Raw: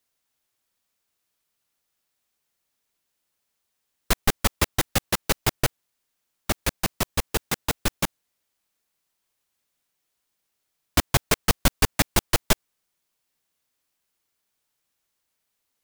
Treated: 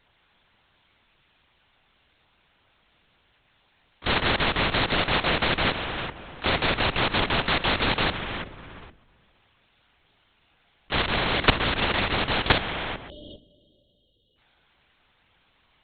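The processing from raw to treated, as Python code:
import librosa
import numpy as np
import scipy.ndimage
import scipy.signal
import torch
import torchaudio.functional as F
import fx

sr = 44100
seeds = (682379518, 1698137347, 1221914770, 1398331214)

y = fx.phase_scramble(x, sr, seeds[0], window_ms=100)
y = fx.rev_spring(y, sr, rt60_s=1.6, pass_ms=(40,), chirp_ms=30, drr_db=12.5)
y = fx.spec_erase(y, sr, start_s=13.09, length_s=1.29, low_hz=660.0, high_hz=2800.0)
y = fx.level_steps(y, sr, step_db=17)
y = fx.hum_notches(y, sr, base_hz=50, count=6)
y = fx.ring_mod(y, sr, carrier_hz=24.0, at=(11.01, 12.5), fade=0.02)
y = fx.lpc_vocoder(y, sr, seeds[1], excitation='whisper', order=10)
y = fx.spectral_comp(y, sr, ratio=2.0)
y = y * librosa.db_to_amplitude(8.0)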